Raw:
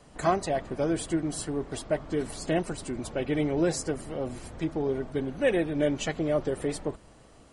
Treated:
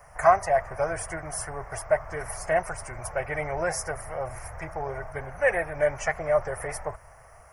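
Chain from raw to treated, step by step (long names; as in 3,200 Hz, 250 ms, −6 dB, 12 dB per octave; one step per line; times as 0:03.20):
drawn EQ curve 110 Hz 0 dB, 270 Hz −26 dB, 650 Hz +4 dB, 2,100 Hz +5 dB, 3,800 Hz −27 dB, 5,500 Hz +1 dB, 7,800 Hz −9 dB, 12,000 Hz +15 dB
level +3.5 dB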